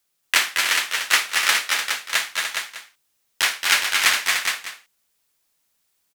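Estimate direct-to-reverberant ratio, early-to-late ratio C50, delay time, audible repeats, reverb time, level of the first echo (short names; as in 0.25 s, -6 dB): none, none, 51 ms, 5, none, -15.0 dB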